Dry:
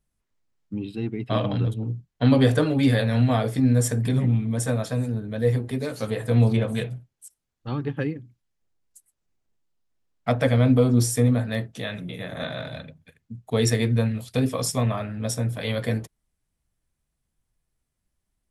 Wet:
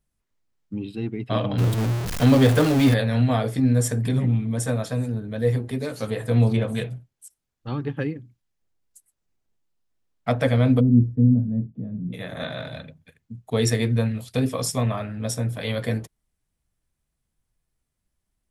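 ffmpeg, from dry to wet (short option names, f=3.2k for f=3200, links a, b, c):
-filter_complex "[0:a]asettb=1/sr,asplit=3[a][b][c];[a]atrim=end=1.584[d];[b]atrim=start=1.58:end=2.94,asetpts=PTS-STARTPTS,afade=t=in:d=0.004:c=qsin,afade=t=out:st=1.356:d=0.004:c=qsin,aeval=exprs='val(0)+0.5*0.0841*sgn(val(0))':c=same[e];[c]atrim=start=2.936[f];[d][e]acrossfade=d=0.004:c1=hsin:c2=qsin[g];[g][f]acrossfade=d=0.004:c1=qsin:c2=hsin,asplit=3[h][i][j];[h]afade=t=out:st=10.79:d=0.02[k];[i]lowpass=f=220:t=q:w=2,afade=t=in:st=10.79:d=0.02,afade=t=out:st=12.12:d=0.02[l];[j]afade=t=in:st=12.12:d=0.02[m];[k][l][m]amix=inputs=3:normalize=0"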